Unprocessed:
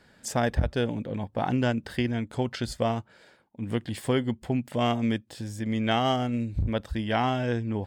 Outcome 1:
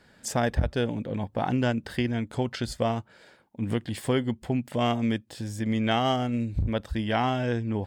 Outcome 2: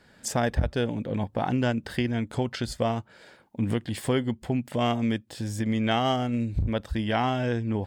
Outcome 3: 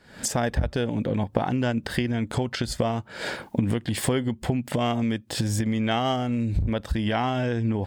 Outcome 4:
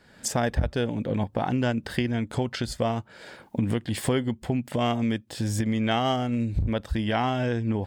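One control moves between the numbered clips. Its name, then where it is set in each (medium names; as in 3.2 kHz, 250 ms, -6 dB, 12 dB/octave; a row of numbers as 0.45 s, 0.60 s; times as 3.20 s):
recorder AGC, rising by: 5.1 dB/s, 13 dB/s, 83 dB/s, 33 dB/s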